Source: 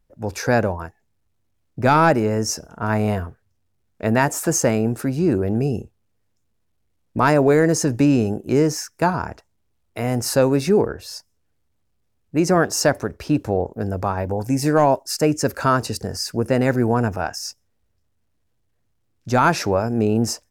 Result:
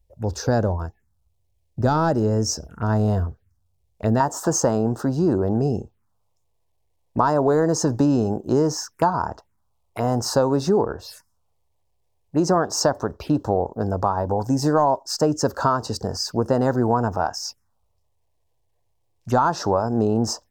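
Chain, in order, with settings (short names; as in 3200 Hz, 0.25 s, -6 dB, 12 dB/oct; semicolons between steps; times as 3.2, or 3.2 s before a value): bell 65 Hz +10.5 dB 1.1 oct, from 4.2 s 990 Hz; compressor 3:1, threshold -15 dBFS, peak gain reduction 8.5 dB; envelope phaser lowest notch 230 Hz, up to 2300 Hz, full sweep at -23.5 dBFS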